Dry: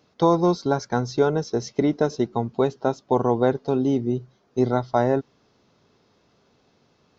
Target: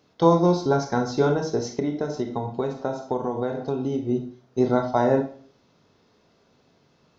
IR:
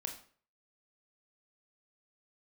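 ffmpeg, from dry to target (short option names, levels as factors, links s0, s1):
-filter_complex "[1:a]atrim=start_sample=2205[s0];[0:a][s0]afir=irnorm=-1:irlink=0,asettb=1/sr,asplit=3[s1][s2][s3];[s1]atrim=end=1.784[s4];[s2]atrim=start=1.78:end=4.09,asetpts=PTS-STARTPTS,afade=t=in:d=0.004:c=qsin,afade=t=out:st=2.306:d=0.004:c=qsin,acompressor=threshold=0.0631:ratio=6[s5];[s3]atrim=start=4.086[s6];[s4][s5]acrossfade=d=0.004:c1=hsin:c2=qsin[s7];[s7][s6]acrossfade=d=0.004:c1=qsin:c2=hsin,volume=1.19"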